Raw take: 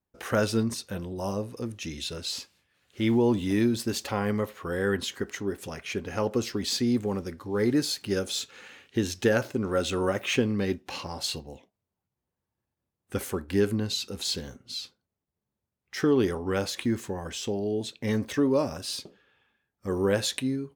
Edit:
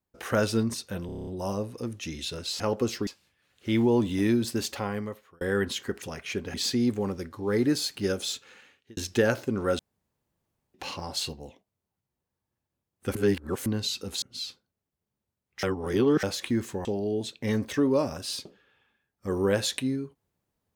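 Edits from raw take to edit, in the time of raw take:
1.06 stutter 0.03 s, 8 plays
3.96–4.73 fade out
5.34–5.62 cut
6.14–6.61 move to 2.39
8.29–9.04 fade out
9.86–10.81 room tone
13.22–13.73 reverse
14.29–14.57 cut
15.98–16.58 reverse
17.2–17.45 cut

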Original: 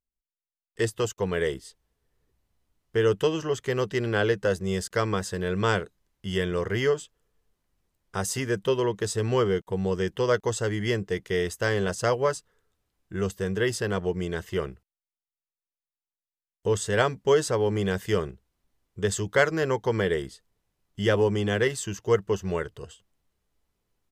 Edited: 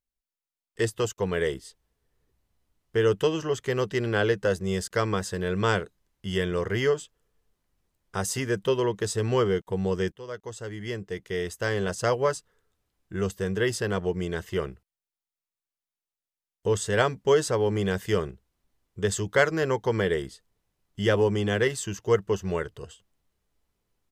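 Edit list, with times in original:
10.12–12.18 fade in, from -18.5 dB

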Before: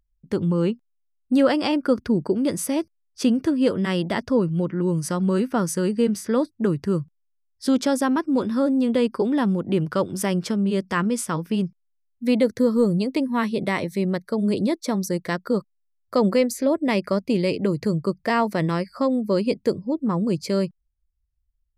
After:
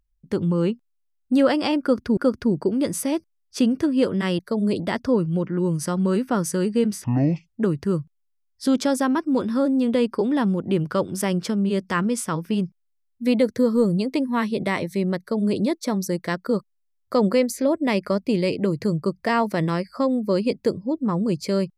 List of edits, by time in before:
1.81–2.17 loop, 2 plays
6.27–6.54 speed 55%
14.2–14.61 copy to 4.03

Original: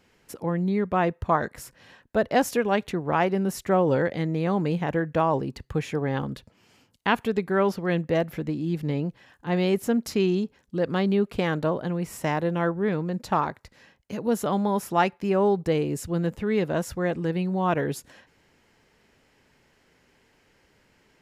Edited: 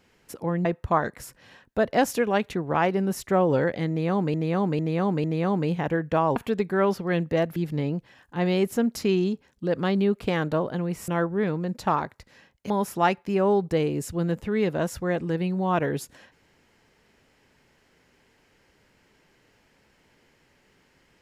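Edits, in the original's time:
0.65–1.03 cut
4.27–4.72 loop, 4 plays
5.39–7.14 cut
8.34–8.67 cut
12.19–12.53 cut
14.15–14.65 cut

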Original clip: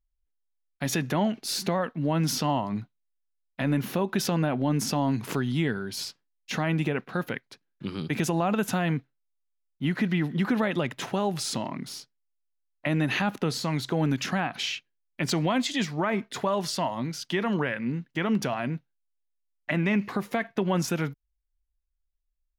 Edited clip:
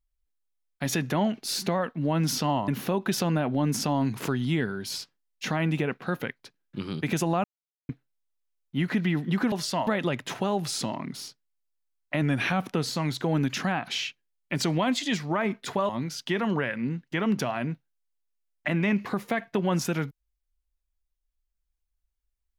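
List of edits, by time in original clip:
2.68–3.75 cut
8.51–8.96 mute
12.94–13.4 speed 92%
16.57–16.92 move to 10.59

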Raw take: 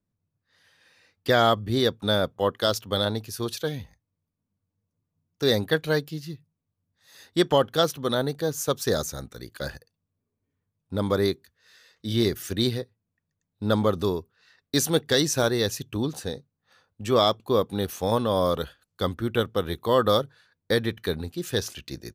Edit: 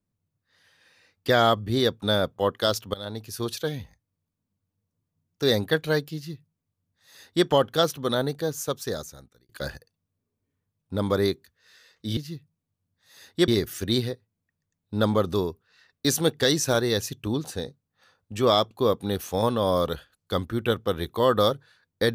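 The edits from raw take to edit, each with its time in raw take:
2.94–3.38 fade in, from -20.5 dB
6.15–7.46 copy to 12.17
8.33–9.49 fade out

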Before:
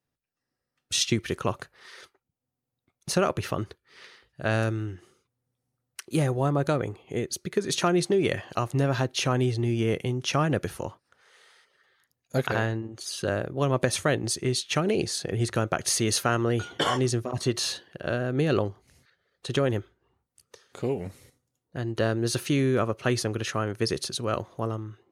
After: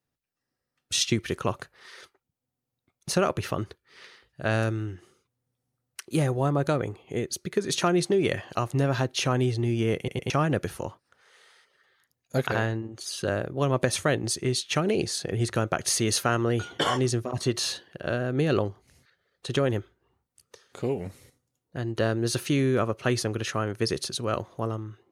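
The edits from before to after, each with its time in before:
9.97 stutter in place 0.11 s, 3 plays

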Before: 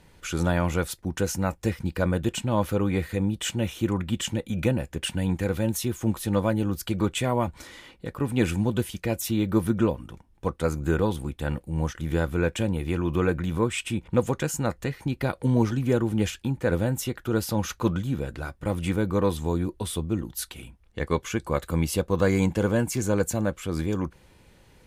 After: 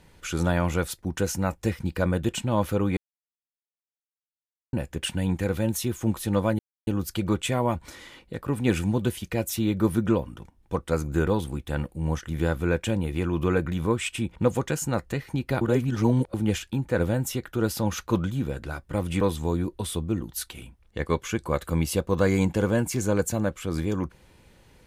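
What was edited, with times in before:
2.97–4.73 mute
6.59 insert silence 0.28 s
15.33–16.06 reverse
18.93–19.22 cut

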